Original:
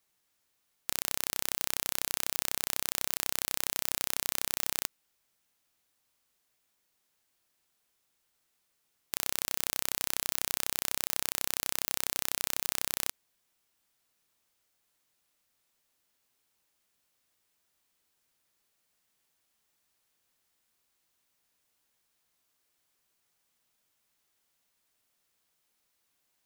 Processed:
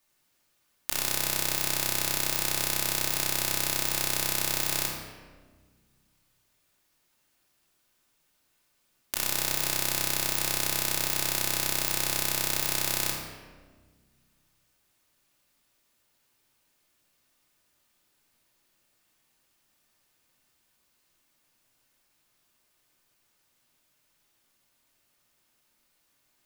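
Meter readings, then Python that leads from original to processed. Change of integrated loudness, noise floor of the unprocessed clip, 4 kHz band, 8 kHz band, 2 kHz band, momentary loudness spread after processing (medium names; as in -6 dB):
+5.0 dB, -77 dBFS, +5.5 dB, +4.5 dB, +6.5 dB, 4 LU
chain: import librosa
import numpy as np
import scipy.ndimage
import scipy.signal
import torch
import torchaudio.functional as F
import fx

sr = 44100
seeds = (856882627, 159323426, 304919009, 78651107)

y = fx.room_shoebox(x, sr, seeds[0], volume_m3=1300.0, walls='mixed', distance_m=2.6)
y = y * 10.0 ** (1.5 / 20.0)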